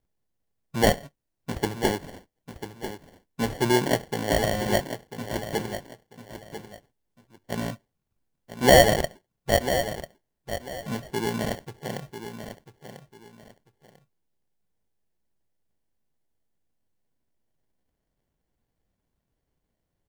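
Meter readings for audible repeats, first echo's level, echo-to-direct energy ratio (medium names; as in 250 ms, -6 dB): 2, -10.5 dB, -10.0 dB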